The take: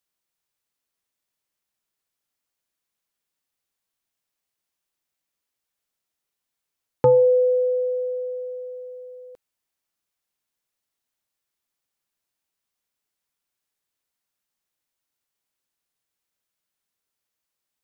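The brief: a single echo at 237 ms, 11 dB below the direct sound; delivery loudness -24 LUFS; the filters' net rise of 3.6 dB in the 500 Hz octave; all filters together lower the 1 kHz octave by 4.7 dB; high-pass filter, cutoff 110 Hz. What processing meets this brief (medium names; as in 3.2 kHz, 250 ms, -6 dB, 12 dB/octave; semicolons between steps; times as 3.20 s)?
high-pass 110 Hz; peaking EQ 500 Hz +5 dB; peaking EQ 1 kHz -7 dB; delay 237 ms -11 dB; trim -8 dB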